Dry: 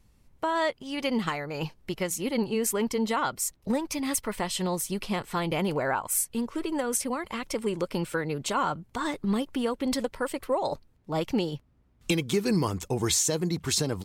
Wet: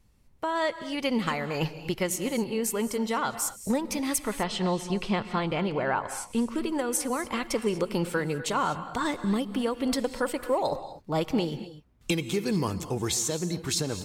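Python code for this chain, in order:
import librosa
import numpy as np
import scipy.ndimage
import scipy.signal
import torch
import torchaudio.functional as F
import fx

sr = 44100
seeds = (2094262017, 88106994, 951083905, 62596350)

y = fx.lowpass(x, sr, hz=4500.0, slope=12, at=(4.18, 6.48))
y = fx.rider(y, sr, range_db=4, speed_s=0.5)
y = fx.rev_gated(y, sr, seeds[0], gate_ms=270, shape='rising', drr_db=11.5)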